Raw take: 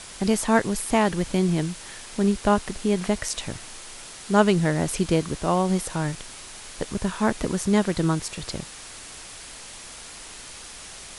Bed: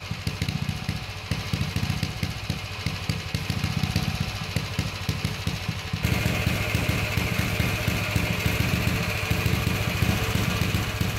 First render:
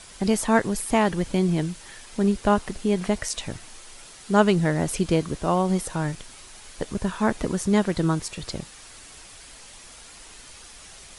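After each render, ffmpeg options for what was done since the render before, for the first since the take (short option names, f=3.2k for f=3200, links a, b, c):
-af "afftdn=nr=6:nf=-41"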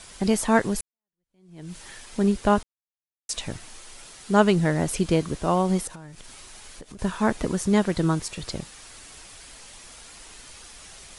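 -filter_complex "[0:a]asettb=1/sr,asplit=3[a][b][c];[a]atrim=end=5.874[d];[b]atrim=start=5.87:end=6.99,asetpts=PTS-STARTPTS,afade=t=in:d=0.004:c=qsin,afade=t=out:st=1.116:d=0.004:c=qsin,acompressor=threshold=-38dB:ratio=8:attack=3.2:release=140:knee=1:detection=peak[e];[c]atrim=start=6.986[f];[d][e]acrossfade=d=0.004:c1=hsin:c2=qsin[g];[g][f]acrossfade=d=0.004:c1=qsin:c2=hsin,asplit=4[h][i][j][k];[h]atrim=end=0.81,asetpts=PTS-STARTPTS,afade=t=out:st=0.806:d=0.004:c=hsin[l];[i]atrim=start=0.81:end=2.63,asetpts=PTS-STARTPTS,afade=t=in:d=0.95:c=exp,afade=t=out:st=1.816:d=0.004:c=hsin[m];[j]atrim=start=2.63:end=3.29,asetpts=PTS-STARTPTS,volume=0[n];[k]atrim=start=3.29,asetpts=PTS-STARTPTS,afade=t=in:d=0.004:c=hsin[o];[l][m][n][o]concat=n=4:v=0:a=1"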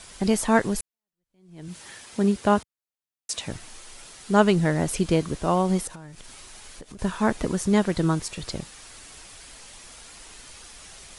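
-filter_complex "[0:a]asettb=1/sr,asplit=3[a][b][c];[a]atrim=end=1.684[d];[b]atrim=start=1.68:end=3.5,asetpts=PTS-STARTPTS,afade=t=in:d=0.004:c=qsin,afade=t=out:st=1.816:d=0.004:c=qsin,highpass=82[e];[c]atrim=start=3.496[f];[d][e]acrossfade=d=0.004:c1=hsin:c2=qsin[g];[g][f]acrossfade=d=0.004:c1=qsin:c2=hsin"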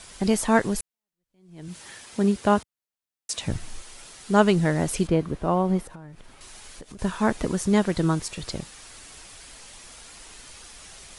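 -filter_complex "[0:a]asettb=1/sr,asplit=3[a][b][c];[a]atrim=end=3.424[d];[b]atrim=start=3.42:end=3.82,asetpts=PTS-STARTPTS,afade=t=in:d=0.004:c=qsin,afade=t=out:st=0.396:d=0.004:c=qsin,lowshelf=f=190:g=11.5[e];[c]atrim=start=3.816[f];[d][e]acrossfade=d=0.004:c1=hsin:c2=qsin[g];[g][f]acrossfade=d=0.004:c1=qsin:c2=hsin,asettb=1/sr,asplit=3[h][i][j];[h]atrim=end=5.074[k];[i]atrim=start=5.07:end=6.41,asetpts=PTS-STARTPTS,afade=t=in:d=0.004:c=qsin,afade=t=out:st=1.336:d=0.004:c=qsin,equalizer=f=7.5k:t=o:w=2.4:g=-14[l];[j]atrim=start=6.406[m];[k][l]acrossfade=d=0.004:c1=hsin:c2=qsin[n];[n][m]acrossfade=d=0.004:c1=qsin:c2=hsin"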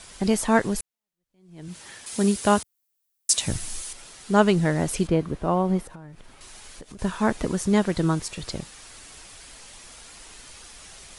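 -filter_complex "[0:a]asettb=1/sr,asplit=3[a][b][c];[a]atrim=end=2.064[d];[b]atrim=start=2.06:end=3.93,asetpts=PTS-STARTPTS,afade=t=in:d=0.004:c=qsin,afade=t=out:st=1.866:d=0.004:c=qsin,aemphasis=mode=production:type=75kf[e];[c]atrim=start=3.926[f];[d][e]acrossfade=d=0.004:c1=hsin:c2=qsin[g];[g][f]acrossfade=d=0.004:c1=qsin:c2=hsin"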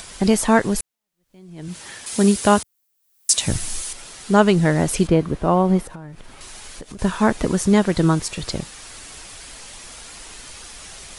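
-filter_complex "[0:a]asplit=2[a][b];[b]alimiter=limit=-11.5dB:level=0:latency=1:release=254,volume=0dB[c];[a][c]amix=inputs=2:normalize=0,acompressor=mode=upward:threshold=-36dB:ratio=2.5"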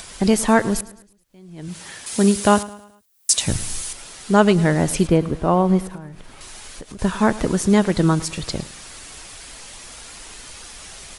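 -af "aecho=1:1:107|214|321|428:0.119|0.0523|0.023|0.0101"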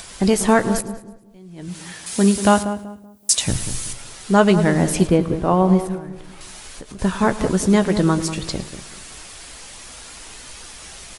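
-filter_complex "[0:a]asplit=2[a][b];[b]adelay=16,volume=-11.5dB[c];[a][c]amix=inputs=2:normalize=0,asplit=2[d][e];[e]adelay=190,lowpass=f=980:p=1,volume=-9.5dB,asplit=2[f][g];[g]adelay=190,lowpass=f=980:p=1,volume=0.33,asplit=2[h][i];[i]adelay=190,lowpass=f=980:p=1,volume=0.33,asplit=2[j][k];[k]adelay=190,lowpass=f=980:p=1,volume=0.33[l];[f][h][j][l]amix=inputs=4:normalize=0[m];[d][m]amix=inputs=2:normalize=0"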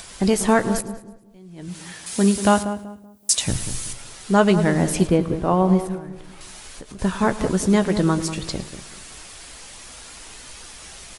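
-af "volume=-2dB"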